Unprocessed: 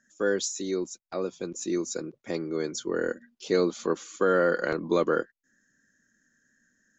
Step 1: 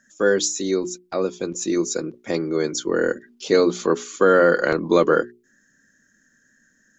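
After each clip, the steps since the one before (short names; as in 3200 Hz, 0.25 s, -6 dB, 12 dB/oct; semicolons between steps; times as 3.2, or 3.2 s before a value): notches 60/120/180/240/300/360/420 Hz; gain +8 dB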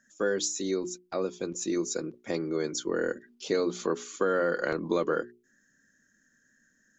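compressor 2.5:1, threshold -18 dBFS, peak gain reduction 5.5 dB; gain -6.5 dB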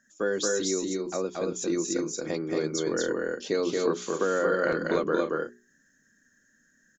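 loudspeakers at several distances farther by 78 m -2 dB, 91 m -10 dB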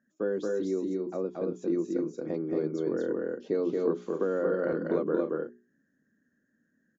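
band-pass 270 Hz, Q 0.64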